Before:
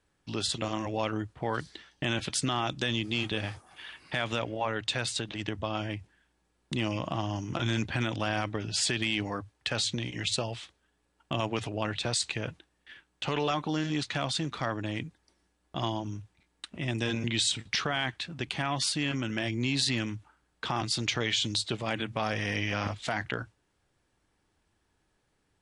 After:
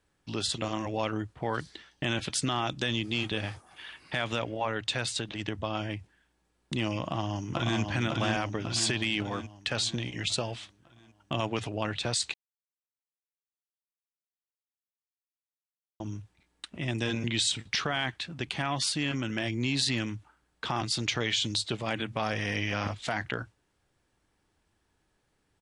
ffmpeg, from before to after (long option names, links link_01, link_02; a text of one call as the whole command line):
ffmpeg -i in.wav -filter_complex "[0:a]asplit=2[link_01][link_02];[link_02]afade=type=in:start_time=7:duration=0.01,afade=type=out:start_time=7.81:duration=0.01,aecho=0:1:550|1100|1650|2200|2750|3300|3850|4400:0.707946|0.38937|0.214154|0.117784|0.0647815|0.0356298|0.0195964|0.010778[link_03];[link_01][link_03]amix=inputs=2:normalize=0,asplit=3[link_04][link_05][link_06];[link_04]atrim=end=12.34,asetpts=PTS-STARTPTS,afade=type=out:start_time=12.336:duration=0.004:curve=hsin[link_07];[link_05]atrim=start=12.34:end=16,asetpts=PTS-STARTPTS,volume=0[link_08];[link_06]atrim=start=16,asetpts=PTS-STARTPTS,afade=type=in:duration=0.004:curve=hsin[link_09];[link_07][link_08][link_09]concat=n=3:v=0:a=1" out.wav